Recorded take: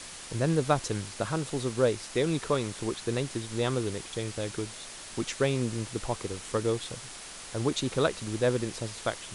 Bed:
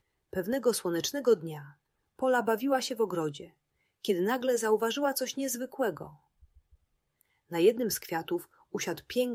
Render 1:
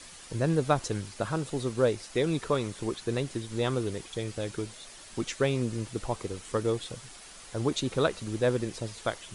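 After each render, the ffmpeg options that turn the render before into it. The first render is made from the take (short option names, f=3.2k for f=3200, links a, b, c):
-af "afftdn=nr=7:nf=-44"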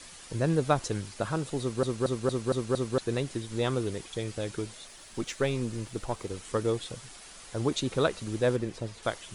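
-filter_complex "[0:a]asettb=1/sr,asplit=3[a][b][c];[a]atrim=end=4.874[d];[b]atrim=start=4.87:end=6.3,asetpts=PTS-STARTPTS,afade=t=in:d=0.004:c=qsin,afade=t=out:st=1.426:d=0.004:c=qsin,aeval=exprs='if(lt(val(0),0),0.708*val(0),val(0))':c=same[e];[c]atrim=start=6.296[f];[d][e]acrossfade=d=0.004:c1=hsin:c2=qsin[g];[g][f]acrossfade=d=0.004:c1=qsin:c2=hsin,asettb=1/sr,asplit=3[h][i][j];[h]atrim=end=8.564[k];[i]atrim=start=8.56:end=9.03,asetpts=PTS-STARTPTS,afade=t=in:d=0.004:c=qsin,afade=t=out:st=0.466:d=0.004:c=qsin,highshelf=f=3.6k:g=-8.5[l];[j]atrim=start=9.026[m];[k][l]acrossfade=d=0.004:c1=hsin:c2=qsin[n];[n][m]acrossfade=d=0.004:c1=qsin:c2=hsin,asplit=7[o][p][q][r][s][t][u];[o]atrim=end=1.832[v];[p]atrim=start=1.598:end=1.832[w];[q]atrim=start=1.598:end=1.832[x];[r]atrim=start=1.598:end=1.832[y];[s]atrim=start=1.598:end=1.832[z];[t]atrim=start=1.598:end=1.832[aa];[u]atrim=start=2.978[ab];[v][w]acrossfade=d=0.004:c1=hsin:c2=hsin[ac];[ac][x]acrossfade=d=0.004:c1=hsin:c2=hsin[ad];[ad][y]acrossfade=d=0.004:c1=hsin:c2=hsin[ae];[ae][z]acrossfade=d=0.004:c1=hsin:c2=hsin[af];[af][aa]acrossfade=d=0.004:c1=hsin:c2=hsin[ag];[ag][ab]acrossfade=d=0.004:c1=hsin:c2=hsin"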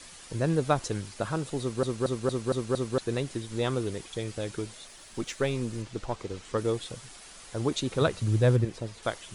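-filter_complex "[0:a]asettb=1/sr,asplit=3[a][b][c];[a]atrim=end=5.824[d];[b]atrim=start=5.82:end=6.58,asetpts=PTS-STARTPTS,afade=t=in:d=0.004:c=qsin,afade=t=out:st=0.756:d=0.004:c=qsin,lowpass=6.5k[e];[c]atrim=start=6.576[f];[d][e]acrossfade=d=0.004:c1=hsin:c2=qsin[g];[g][f]acrossfade=d=0.004:c1=qsin:c2=hsin,asettb=1/sr,asplit=3[h][i][j];[h]atrim=end=8.014[k];[i]atrim=start=8.01:end=8.65,asetpts=PTS-STARTPTS,afade=t=in:d=0.004:c=qsin,afade=t=out:st=0.636:d=0.004:c=qsin,equalizer=f=110:w=1.5:g=13[l];[j]atrim=start=8.646[m];[k][l]acrossfade=d=0.004:c1=hsin:c2=qsin[n];[n][m]acrossfade=d=0.004:c1=qsin:c2=hsin"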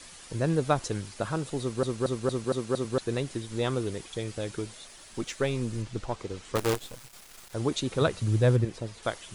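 -filter_complex "[0:a]asettb=1/sr,asplit=3[a][b][c];[a]atrim=end=2.444[d];[b]atrim=start=2.44:end=2.85,asetpts=PTS-STARTPTS,afade=t=in:d=0.004:c=qsin,afade=t=out:st=0.406:d=0.004:c=qsin,highpass=120[e];[c]atrim=start=2.846[f];[d][e]acrossfade=d=0.004:c1=hsin:c2=qsin[g];[g][f]acrossfade=d=0.004:c1=qsin:c2=hsin,asettb=1/sr,asplit=3[h][i][j];[h]atrim=end=5.474[k];[i]atrim=start=5.47:end=6.02,asetpts=PTS-STARTPTS,afade=t=in:d=0.004:c=qsin,afade=t=out:st=0.546:d=0.004:c=qsin,asubboost=boost=6.5:cutoff=250[l];[j]atrim=start=6.016[m];[k][l]acrossfade=d=0.004:c1=hsin:c2=qsin[n];[n][m]acrossfade=d=0.004:c1=qsin:c2=hsin,asettb=1/sr,asplit=3[o][p][q];[o]atrim=end=6.554[r];[p]atrim=start=6.55:end=7.54,asetpts=PTS-STARTPTS,afade=t=in:d=0.004:c=qsin,afade=t=out:st=0.986:d=0.004:c=qsin,acrusher=bits=5:dc=4:mix=0:aa=0.000001[s];[q]atrim=start=7.536[t];[r][s]acrossfade=d=0.004:c1=hsin:c2=qsin[u];[u][t]acrossfade=d=0.004:c1=qsin:c2=hsin"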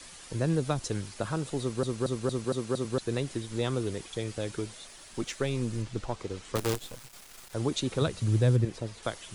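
-filter_complex "[0:a]acrossover=split=300|3000[a][b][c];[b]acompressor=threshold=-29dB:ratio=6[d];[a][d][c]amix=inputs=3:normalize=0"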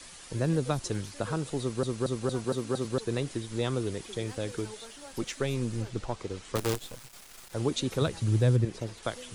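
-filter_complex "[1:a]volume=-20dB[a];[0:a][a]amix=inputs=2:normalize=0"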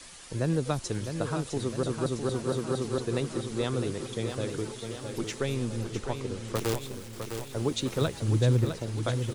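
-af "aecho=1:1:657|1314|1971|2628|3285|3942|4599:0.422|0.245|0.142|0.0823|0.0477|0.0277|0.0161"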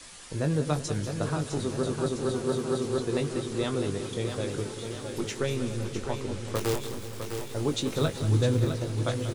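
-filter_complex "[0:a]asplit=2[a][b];[b]adelay=20,volume=-7dB[c];[a][c]amix=inputs=2:normalize=0,asplit=2[d][e];[e]aecho=0:1:189|378|567|756|945|1134|1323:0.251|0.151|0.0904|0.0543|0.0326|0.0195|0.0117[f];[d][f]amix=inputs=2:normalize=0"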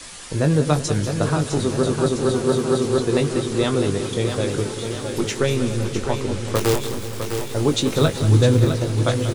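-af "volume=9dB"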